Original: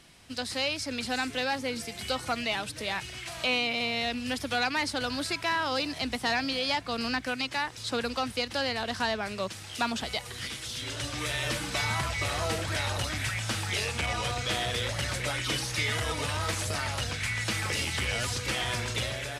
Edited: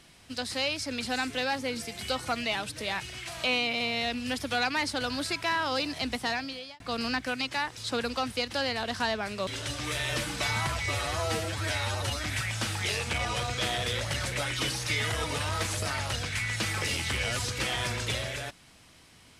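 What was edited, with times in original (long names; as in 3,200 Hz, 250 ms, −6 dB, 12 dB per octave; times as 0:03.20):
0:06.14–0:06.80: fade out
0:09.47–0:10.81: remove
0:12.20–0:13.12: time-stretch 1.5×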